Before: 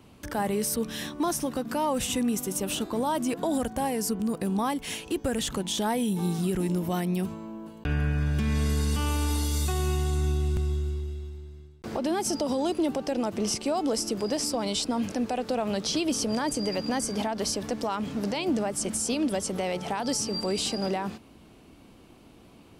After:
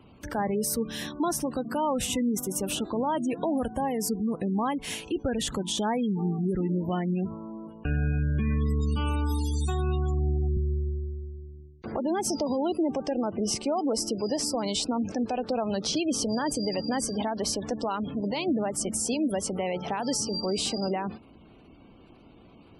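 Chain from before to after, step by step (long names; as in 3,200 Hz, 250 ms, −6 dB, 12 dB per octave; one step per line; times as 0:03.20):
gate on every frequency bin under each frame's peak −25 dB strong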